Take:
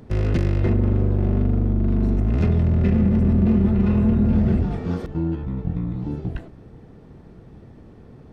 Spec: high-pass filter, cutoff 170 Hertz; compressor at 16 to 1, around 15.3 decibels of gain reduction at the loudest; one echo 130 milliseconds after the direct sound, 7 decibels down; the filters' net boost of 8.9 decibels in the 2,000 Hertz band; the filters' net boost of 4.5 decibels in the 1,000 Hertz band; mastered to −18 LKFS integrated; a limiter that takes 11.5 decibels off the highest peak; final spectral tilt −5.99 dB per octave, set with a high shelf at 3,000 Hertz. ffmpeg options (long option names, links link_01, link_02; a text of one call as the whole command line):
ffmpeg -i in.wav -af "highpass=170,equalizer=frequency=1000:width_type=o:gain=3.5,equalizer=frequency=2000:width_type=o:gain=8.5,highshelf=frequency=3000:gain=4,acompressor=threshold=-32dB:ratio=16,alimiter=level_in=6dB:limit=-24dB:level=0:latency=1,volume=-6dB,aecho=1:1:130:0.447,volume=21dB" out.wav